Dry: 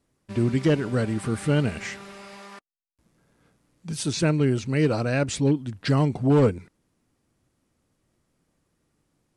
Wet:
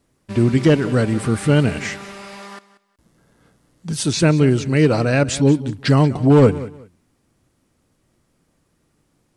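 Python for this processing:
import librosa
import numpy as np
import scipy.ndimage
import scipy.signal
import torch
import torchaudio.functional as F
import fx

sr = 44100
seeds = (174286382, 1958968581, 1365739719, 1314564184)

y = fx.notch(x, sr, hz=2400.0, q=9.7, at=(2.47, 4.04))
y = fx.echo_feedback(y, sr, ms=185, feedback_pct=22, wet_db=-17)
y = F.gain(torch.from_numpy(y), 7.0).numpy()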